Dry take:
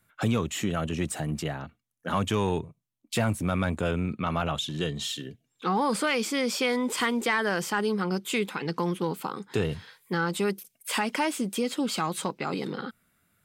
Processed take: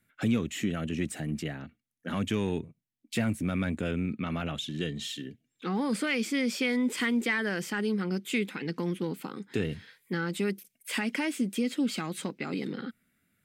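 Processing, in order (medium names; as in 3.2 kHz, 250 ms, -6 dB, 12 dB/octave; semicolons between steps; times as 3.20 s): graphic EQ 250/1000/2000 Hz +8/-8/+7 dB; trim -6 dB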